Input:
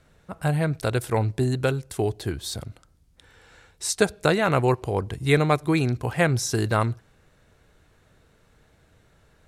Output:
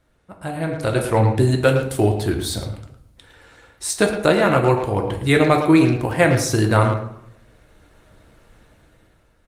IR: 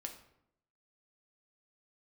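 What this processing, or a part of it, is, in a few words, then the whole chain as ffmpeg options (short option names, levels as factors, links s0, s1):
speakerphone in a meeting room: -filter_complex "[1:a]atrim=start_sample=2205[s0];[0:a][s0]afir=irnorm=-1:irlink=0,asplit=2[s1][s2];[s2]adelay=110,highpass=300,lowpass=3400,asoftclip=type=hard:threshold=0.126,volume=0.398[s3];[s1][s3]amix=inputs=2:normalize=0,dynaudnorm=f=190:g=9:m=3.98" -ar 48000 -c:a libopus -b:a 32k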